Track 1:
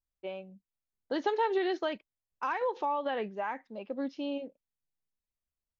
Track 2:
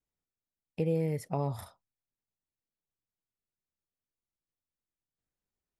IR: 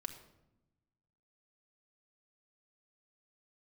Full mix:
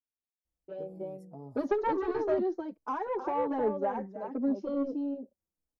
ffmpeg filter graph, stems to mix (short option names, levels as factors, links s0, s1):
-filter_complex "[0:a]equalizer=f=79:t=o:w=0.77:g=12.5,adelay=450,volume=1.26,asplit=2[s0][s1];[s1]volume=0.447[s2];[1:a]volume=0.15,asplit=2[s3][s4];[s4]volume=0.0841[s5];[s2][s5]amix=inputs=2:normalize=0,aecho=0:1:310:1[s6];[s0][s3][s6]amix=inputs=3:normalize=0,firequalizer=gain_entry='entry(140,0);entry(230,9);entry(2600,-20);entry(5500,-3)':delay=0.05:min_phase=1,asoftclip=type=tanh:threshold=0.119,asplit=2[s7][s8];[s8]adelay=4.2,afreqshift=-1.4[s9];[s7][s9]amix=inputs=2:normalize=1"